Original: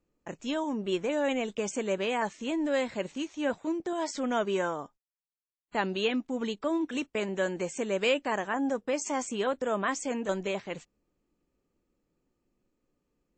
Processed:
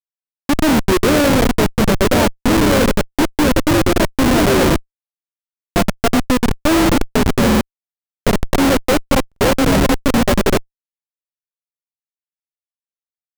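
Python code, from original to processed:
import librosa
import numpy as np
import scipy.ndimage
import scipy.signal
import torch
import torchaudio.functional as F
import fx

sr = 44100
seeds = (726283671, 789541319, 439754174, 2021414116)

p1 = fx.sample_sort(x, sr, block=64, at=(4.82, 6.08))
p2 = fx.peak_eq(p1, sr, hz=350.0, db=-14.5, octaves=2.5, at=(7.52, 8.21), fade=0.02)
p3 = p2 + fx.echo_feedback(p2, sr, ms=98, feedback_pct=45, wet_db=-6, dry=0)
p4 = fx.leveller(p3, sr, passes=5)
p5 = fx.high_shelf(p4, sr, hz=2100.0, db=-8.5)
p6 = p5 + 10.0 ** (-8.5 / 20.0) * np.pad(p5, (int(1026 * sr / 1000.0), 0))[:len(p5)]
p7 = fx.level_steps(p6, sr, step_db=19)
p8 = p6 + (p7 * 10.0 ** (2.0 / 20.0))
p9 = fx.schmitt(p8, sr, flips_db=-11.0)
p10 = fx.buffer_glitch(p9, sr, at_s=(0.31, 5.62, 7.47, 9.27), block=2048, repeats=2)
y = p10 * 10.0 ** (3.0 / 20.0)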